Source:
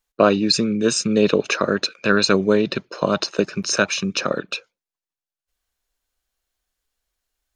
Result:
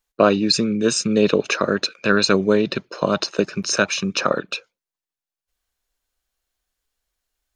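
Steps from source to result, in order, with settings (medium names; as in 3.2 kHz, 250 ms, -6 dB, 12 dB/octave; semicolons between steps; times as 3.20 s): 3.96–4.39 s: dynamic bell 1 kHz, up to +6 dB, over -36 dBFS, Q 1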